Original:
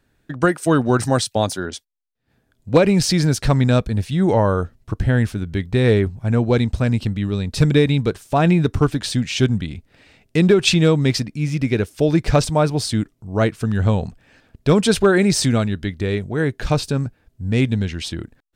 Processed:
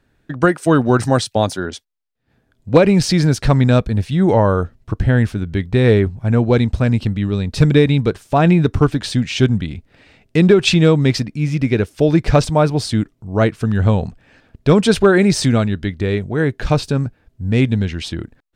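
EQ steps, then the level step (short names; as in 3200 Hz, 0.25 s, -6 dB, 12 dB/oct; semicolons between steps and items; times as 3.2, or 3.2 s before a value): high shelf 5800 Hz -8 dB; +3.0 dB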